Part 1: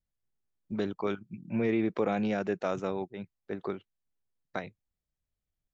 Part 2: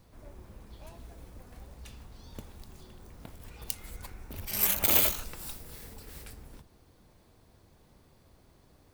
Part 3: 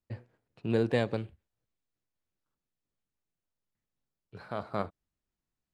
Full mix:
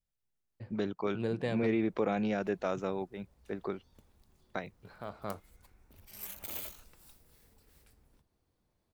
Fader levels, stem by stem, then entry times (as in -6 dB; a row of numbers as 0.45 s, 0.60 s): -2.0 dB, -17.5 dB, -6.5 dB; 0.00 s, 1.60 s, 0.50 s